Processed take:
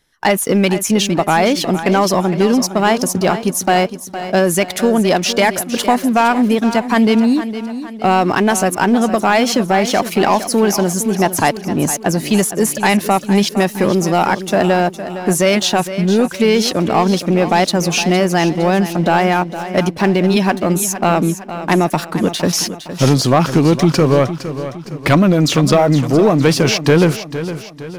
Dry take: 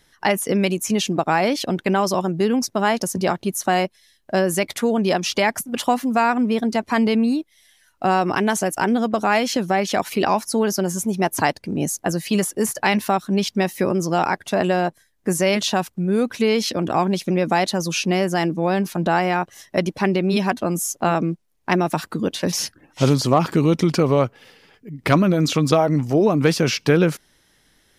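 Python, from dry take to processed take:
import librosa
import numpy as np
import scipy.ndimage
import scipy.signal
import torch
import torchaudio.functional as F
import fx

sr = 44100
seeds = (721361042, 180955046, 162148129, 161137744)

p1 = fx.leveller(x, sr, passes=2)
p2 = p1 + fx.echo_feedback(p1, sr, ms=461, feedback_pct=45, wet_db=-12, dry=0)
y = p2 * 10.0 ** (-1.0 / 20.0)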